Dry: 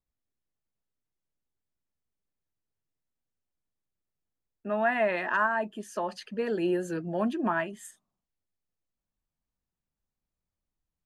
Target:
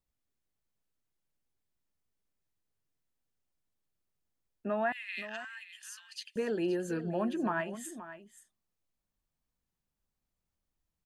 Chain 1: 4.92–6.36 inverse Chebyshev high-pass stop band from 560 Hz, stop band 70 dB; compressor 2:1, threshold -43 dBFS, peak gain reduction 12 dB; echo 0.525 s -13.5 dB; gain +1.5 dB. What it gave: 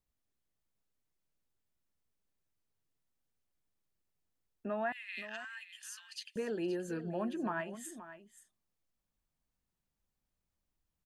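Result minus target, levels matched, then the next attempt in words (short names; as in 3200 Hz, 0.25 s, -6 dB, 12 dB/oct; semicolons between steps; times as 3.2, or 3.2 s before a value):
compressor: peak gain reduction +4.5 dB
4.92–6.36 inverse Chebyshev high-pass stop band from 560 Hz, stop band 70 dB; compressor 2:1, threshold -34.5 dBFS, peak gain reduction 7.5 dB; echo 0.525 s -13.5 dB; gain +1.5 dB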